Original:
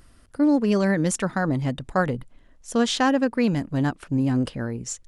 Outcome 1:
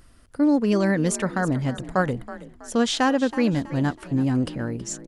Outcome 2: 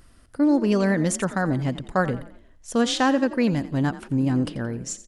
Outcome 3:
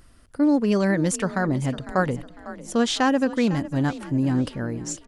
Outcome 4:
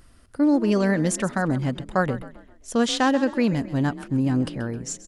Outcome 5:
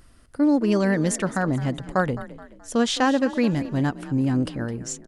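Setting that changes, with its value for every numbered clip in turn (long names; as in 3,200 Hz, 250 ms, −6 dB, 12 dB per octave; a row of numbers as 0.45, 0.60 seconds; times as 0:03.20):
echo with shifted repeats, delay time: 324, 87, 502, 132, 213 milliseconds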